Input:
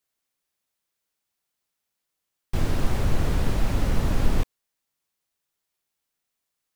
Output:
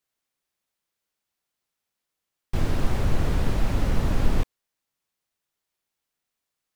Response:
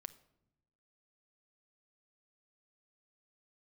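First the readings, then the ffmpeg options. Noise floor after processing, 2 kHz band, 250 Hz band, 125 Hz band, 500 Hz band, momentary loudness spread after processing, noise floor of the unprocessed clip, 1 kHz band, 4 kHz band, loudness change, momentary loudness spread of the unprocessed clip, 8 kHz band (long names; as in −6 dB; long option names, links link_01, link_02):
−85 dBFS, −0.5 dB, 0.0 dB, 0.0 dB, 0.0 dB, 5 LU, −82 dBFS, 0.0 dB, −1.0 dB, 0.0 dB, 5 LU, −2.5 dB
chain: -af "highshelf=frequency=5800:gain=-4"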